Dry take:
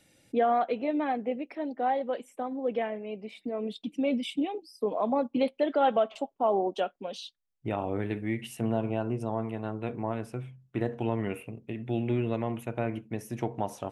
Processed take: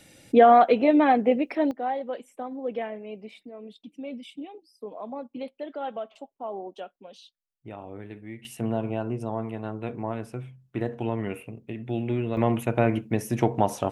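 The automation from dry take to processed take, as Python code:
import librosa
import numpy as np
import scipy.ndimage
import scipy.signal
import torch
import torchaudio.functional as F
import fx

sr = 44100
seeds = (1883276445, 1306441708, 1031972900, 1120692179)

y = fx.gain(x, sr, db=fx.steps((0.0, 10.0), (1.71, -1.0), (3.43, -9.0), (8.45, 1.0), (12.37, 9.0)))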